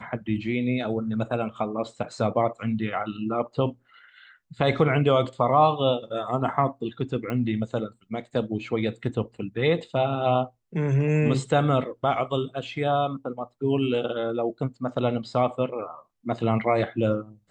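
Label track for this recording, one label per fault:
7.300000	7.300000	pop -19 dBFS

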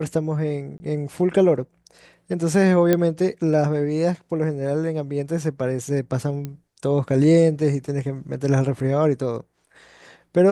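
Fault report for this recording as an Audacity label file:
0.780000	0.800000	gap 20 ms
2.930000	2.930000	pop -6 dBFS
6.450000	6.450000	pop -17 dBFS

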